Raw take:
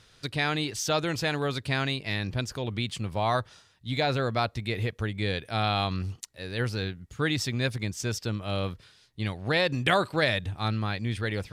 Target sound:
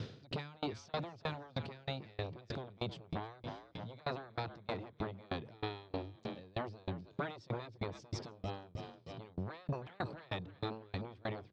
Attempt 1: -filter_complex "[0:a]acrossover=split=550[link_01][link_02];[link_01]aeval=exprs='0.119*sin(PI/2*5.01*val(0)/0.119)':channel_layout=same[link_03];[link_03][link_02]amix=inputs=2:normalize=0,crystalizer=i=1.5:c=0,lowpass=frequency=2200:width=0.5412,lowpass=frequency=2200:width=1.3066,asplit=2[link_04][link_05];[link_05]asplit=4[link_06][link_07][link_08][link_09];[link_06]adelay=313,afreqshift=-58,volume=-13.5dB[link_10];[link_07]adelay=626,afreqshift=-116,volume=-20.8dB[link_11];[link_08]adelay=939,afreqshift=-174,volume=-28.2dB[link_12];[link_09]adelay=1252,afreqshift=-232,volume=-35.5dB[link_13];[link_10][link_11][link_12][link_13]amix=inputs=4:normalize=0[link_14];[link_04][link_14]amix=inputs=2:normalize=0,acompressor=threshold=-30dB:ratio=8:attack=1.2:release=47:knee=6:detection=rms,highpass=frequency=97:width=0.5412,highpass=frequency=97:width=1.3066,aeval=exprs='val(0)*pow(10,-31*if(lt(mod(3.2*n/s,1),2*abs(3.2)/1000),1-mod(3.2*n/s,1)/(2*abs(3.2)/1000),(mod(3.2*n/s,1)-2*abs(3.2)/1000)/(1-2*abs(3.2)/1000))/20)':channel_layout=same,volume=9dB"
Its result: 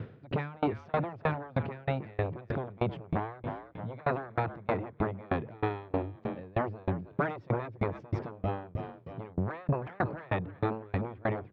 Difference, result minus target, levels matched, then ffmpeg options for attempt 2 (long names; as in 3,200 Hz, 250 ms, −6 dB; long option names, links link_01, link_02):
4,000 Hz band −15.0 dB; downward compressor: peak gain reduction −10.5 dB
-filter_complex "[0:a]acrossover=split=550[link_01][link_02];[link_01]aeval=exprs='0.119*sin(PI/2*5.01*val(0)/0.119)':channel_layout=same[link_03];[link_03][link_02]amix=inputs=2:normalize=0,crystalizer=i=1.5:c=0,lowpass=frequency=4700:width=0.5412,lowpass=frequency=4700:width=1.3066,asplit=2[link_04][link_05];[link_05]asplit=4[link_06][link_07][link_08][link_09];[link_06]adelay=313,afreqshift=-58,volume=-13.5dB[link_10];[link_07]adelay=626,afreqshift=-116,volume=-20.8dB[link_11];[link_08]adelay=939,afreqshift=-174,volume=-28.2dB[link_12];[link_09]adelay=1252,afreqshift=-232,volume=-35.5dB[link_13];[link_10][link_11][link_12][link_13]amix=inputs=4:normalize=0[link_14];[link_04][link_14]amix=inputs=2:normalize=0,acompressor=threshold=-40.5dB:ratio=8:attack=1.2:release=47:knee=6:detection=rms,highpass=frequency=97:width=0.5412,highpass=frequency=97:width=1.3066,aeval=exprs='val(0)*pow(10,-31*if(lt(mod(3.2*n/s,1),2*abs(3.2)/1000),1-mod(3.2*n/s,1)/(2*abs(3.2)/1000),(mod(3.2*n/s,1)-2*abs(3.2)/1000)/(1-2*abs(3.2)/1000))/20)':channel_layout=same,volume=9dB"